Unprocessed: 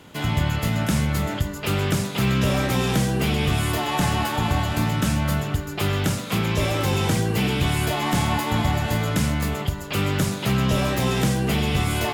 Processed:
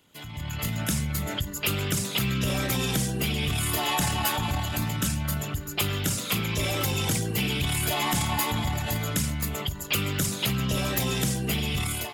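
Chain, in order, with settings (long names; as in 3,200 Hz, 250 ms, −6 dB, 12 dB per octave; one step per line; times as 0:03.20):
spectral envelope exaggerated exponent 1.5
first-order pre-emphasis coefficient 0.9
automatic gain control gain up to 13 dB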